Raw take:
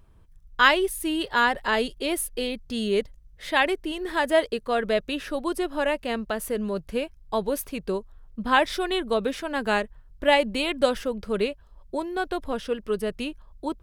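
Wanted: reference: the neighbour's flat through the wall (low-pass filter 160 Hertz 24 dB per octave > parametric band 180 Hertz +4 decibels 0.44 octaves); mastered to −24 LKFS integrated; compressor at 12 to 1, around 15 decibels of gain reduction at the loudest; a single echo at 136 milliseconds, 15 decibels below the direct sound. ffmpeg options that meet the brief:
ffmpeg -i in.wav -af "acompressor=threshold=-29dB:ratio=12,lowpass=frequency=160:width=0.5412,lowpass=frequency=160:width=1.3066,equalizer=frequency=180:width_type=o:width=0.44:gain=4,aecho=1:1:136:0.178,volume=28dB" out.wav

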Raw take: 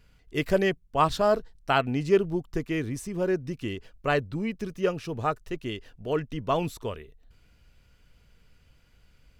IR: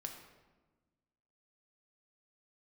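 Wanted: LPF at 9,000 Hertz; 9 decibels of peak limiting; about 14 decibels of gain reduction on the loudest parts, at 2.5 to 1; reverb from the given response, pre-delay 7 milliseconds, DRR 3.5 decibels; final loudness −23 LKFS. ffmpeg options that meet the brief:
-filter_complex "[0:a]lowpass=9000,acompressor=threshold=-38dB:ratio=2.5,alimiter=level_in=6.5dB:limit=-24dB:level=0:latency=1,volume=-6.5dB,asplit=2[link_01][link_02];[1:a]atrim=start_sample=2205,adelay=7[link_03];[link_02][link_03]afir=irnorm=-1:irlink=0,volume=-1dB[link_04];[link_01][link_04]amix=inputs=2:normalize=0,volume=17.5dB"

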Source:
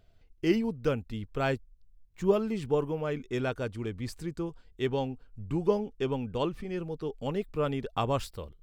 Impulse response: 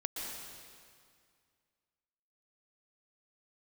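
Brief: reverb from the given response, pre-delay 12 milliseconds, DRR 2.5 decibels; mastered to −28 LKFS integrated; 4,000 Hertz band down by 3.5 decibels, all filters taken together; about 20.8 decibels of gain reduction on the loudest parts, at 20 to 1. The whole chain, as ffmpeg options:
-filter_complex "[0:a]equalizer=frequency=4000:width_type=o:gain=-5,acompressor=threshold=-40dB:ratio=20,asplit=2[link_01][link_02];[1:a]atrim=start_sample=2205,adelay=12[link_03];[link_02][link_03]afir=irnorm=-1:irlink=0,volume=-4.5dB[link_04];[link_01][link_04]amix=inputs=2:normalize=0,volume=16dB"

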